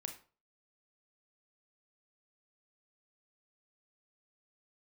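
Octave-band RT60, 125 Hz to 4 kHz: 0.45, 0.40, 0.40, 0.40, 0.30, 0.30 seconds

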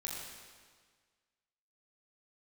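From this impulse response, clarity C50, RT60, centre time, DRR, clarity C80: −1.0 dB, 1.6 s, 99 ms, −4.0 dB, 1.0 dB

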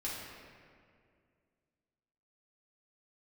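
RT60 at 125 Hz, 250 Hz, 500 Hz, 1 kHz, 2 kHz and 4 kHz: 2.6, 2.6, 2.4, 2.0, 1.9, 1.3 seconds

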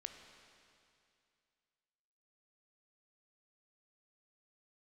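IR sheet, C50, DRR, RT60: 6.0 dB, 5.0 dB, 2.5 s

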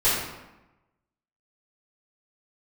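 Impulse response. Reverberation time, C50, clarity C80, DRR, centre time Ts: 1.0 s, 0.0 dB, 3.0 dB, −13.5 dB, 69 ms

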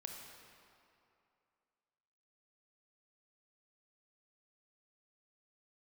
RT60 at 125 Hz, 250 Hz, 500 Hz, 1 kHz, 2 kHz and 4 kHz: 2.3, 2.5, 2.6, 2.7, 2.2, 1.8 seconds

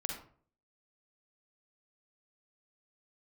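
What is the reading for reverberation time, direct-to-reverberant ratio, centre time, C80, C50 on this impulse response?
0.50 s, 1.0 dB, 32 ms, 8.5 dB, 3.0 dB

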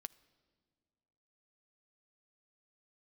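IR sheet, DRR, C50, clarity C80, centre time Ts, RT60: 14.5 dB, 21.0 dB, 22.5 dB, 2 ms, 1.9 s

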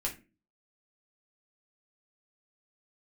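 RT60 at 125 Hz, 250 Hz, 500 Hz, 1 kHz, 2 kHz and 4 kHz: 0.50, 0.50, 0.40, 0.25, 0.30, 0.20 seconds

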